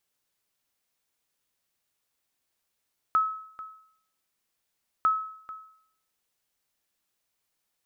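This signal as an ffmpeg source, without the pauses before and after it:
-f lavfi -i "aevalsrc='0.15*(sin(2*PI*1290*mod(t,1.9))*exp(-6.91*mod(t,1.9)/0.64)+0.141*sin(2*PI*1290*max(mod(t,1.9)-0.44,0))*exp(-6.91*max(mod(t,1.9)-0.44,0)/0.64))':d=3.8:s=44100"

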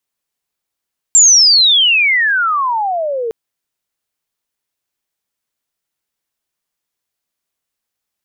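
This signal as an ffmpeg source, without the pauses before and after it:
-f lavfi -i "aevalsrc='pow(10,(-3.5-13*t/2.16)/20)*sin(2*PI*7500*2.16/log(440/7500)*(exp(log(440/7500)*t/2.16)-1))':d=2.16:s=44100"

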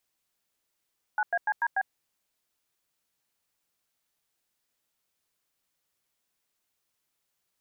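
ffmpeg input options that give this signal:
-f lavfi -i "aevalsrc='0.0501*clip(min(mod(t,0.146),0.05-mod(t,0.146))/0.002,0,1)*(eq(floor(t/0.146),0)*(sin(2*PI*852*mod(t,0.146))+sin(2*PI*1477*mod(t,0.146)))+eq(floor(t/0.146),1)*(sin(2*PI*697*mod(t,0.146))+sin(2*PI*1633*mod(t,0.146)))+eq(floor(t/0.146),2)*(sin(2*PI*852*mod(t,0.146))+sin(2*PI*1633*mod(t,0.146)))+eq(floor(t/0.146),3)*(sin(2*PI*941*mod(t,0.146))+sin(2*PI*1633*mod(t,0.146)))+eq(floor(t/0.146),4)*(sin(2*PI*770*mod(t,0.146))+sin(2*PI*1633*mod(t,0.146))))':d=0.73:s=44100"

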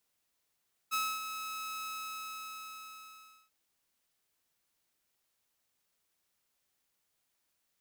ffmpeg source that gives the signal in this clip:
-f lavfi -i "aevalsrc='0.0473*(2*mod(1290*t,1)-1)':d=2.59:s=44100,afade=t=in:d=0.028,afade=t=out:st=0.028:d=0.259:silence=0.355,afade=t=out:st=0.94:d=1.65"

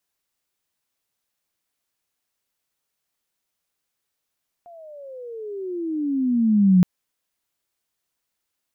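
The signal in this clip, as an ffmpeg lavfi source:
-f lavfi -i "aevalsrc='pow(10,(-10+31*(t/2.17-1))/20)*sin(2*PI*706*2.17/(-24*log(2)/12)*(exp(-24*log(2)/12*t/2.17)-1))':d=2.17:s=44100"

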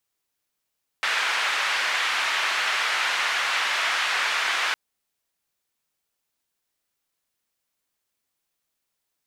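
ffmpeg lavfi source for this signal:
-f lavfi -i "anoisesrc=c=white:d=3.71:r=44100:seed=1,highpass=f=1300,lowpass=f=2100,volume=-6.4dB"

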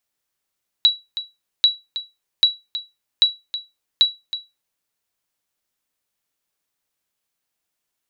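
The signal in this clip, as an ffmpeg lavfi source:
-f lavfi -i "aevalsrc='0.531*(sin(2*PI*3910*mod(t,0.79))*exp(-6.91*mod(t,0.79)/0.22)+0.224*sin(2*PI*3910*max(mod(t,0.79)-0.32,0))*exp(-6.91*max(mod(t,0.79)-0.32,0)/0.22))':d=3.95:s=44100"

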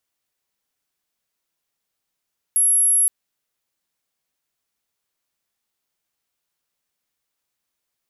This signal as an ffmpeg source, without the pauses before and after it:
-f lavfi -i "aevalsrc='0.211*sin(2*PI*11200*t)':d=0.52:s=44100"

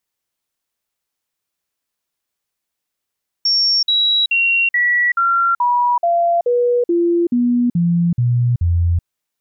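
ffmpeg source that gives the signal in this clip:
-f lavfi -i "aevalsrc='0.251*clip(min(mod(t,0.43),0.38-mod(t,0.43))/0.005,0,1)*sin(2*PI*5490*pow(2,-floor(t/0.43)/2)*mod(t,0.43))':d=5.59:s=44100"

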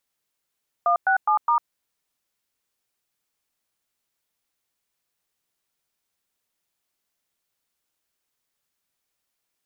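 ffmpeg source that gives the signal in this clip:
-f lavfi -i "aevalsrc='0.112*clip(min(mod(t,0.207),0.1-mod(t,0.207))/0.002,0,1)*(eq(floor(t/0.207),0)*(sin(2*PI*697*mod(t,0.207))+sin(2*PI*1209*mod(t,0.207)))+eq(floor(t/0.207),1)*(sin(2*PI*770*mod(t,0.207))+sin(2*PI*1477*mod(t,0.207)))+eq(floor(t/0.207),2)*(sin(2*PI*852*mod(t,0.207))+sin(2*PI*1209*mod(t,0.207)))+eq(floor(t/0.207),3)*(sin(2*PI*941*mod(t,0.207))+sin(2*PI*1209*mod(t,0.207))))':d=0.828:s=44100"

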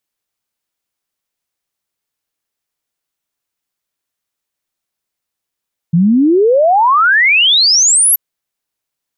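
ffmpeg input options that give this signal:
-f lavfi -i "aevalsrc='0.473*clip(min(t,2.23-t)/0.01,0,1)*sin(2*PI*160*2.23/log(12000/160)*(exp(log(12000/160)*t/2.23)-1))':d=2.23:s=44100"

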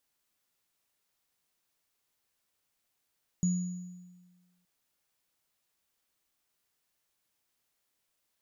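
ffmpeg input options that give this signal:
-f lavfi -i "aevalsrc='0.0708*pow(10,-3*t/1.43)*sin(2*PI*179*t)+0.02*pow(10,-3*t/1.01)*sin(2*PI*6830*t)':d=1.22:s=44100"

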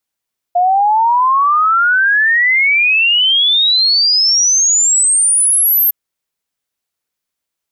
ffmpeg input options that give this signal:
-f lavfi -i "aevalsrc='0.376*clip(min(t,5.36-t)/0.01,0,1)*sin(2*PI*700*5.36/log(13000/700)*(exp(log(13000/700)*t/5.36)-1))':d=5.36:s=44100"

